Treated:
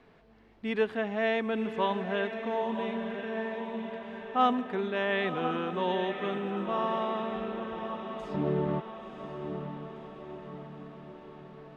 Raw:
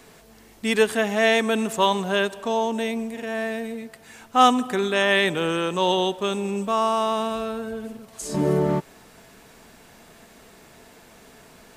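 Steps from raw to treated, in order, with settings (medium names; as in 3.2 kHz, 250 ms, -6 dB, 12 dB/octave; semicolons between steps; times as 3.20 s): distance through air 340 m; echo that smears into a reverb 1016 ms, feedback 57%, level -8 dB; trim -7.5 dB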